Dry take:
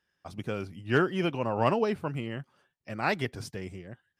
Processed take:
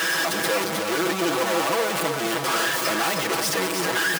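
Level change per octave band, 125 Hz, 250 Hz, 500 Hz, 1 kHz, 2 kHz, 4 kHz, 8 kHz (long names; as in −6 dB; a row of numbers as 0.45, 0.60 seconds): −3.0 dB, +4.5 dB, +6.0 dB, +8.5 dB, +12.0 dB, +17.0 dB, can't be measured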